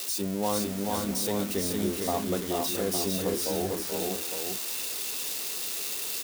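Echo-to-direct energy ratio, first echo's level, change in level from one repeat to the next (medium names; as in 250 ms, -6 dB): -1.0 dB, -8.0 dB, no regular repeats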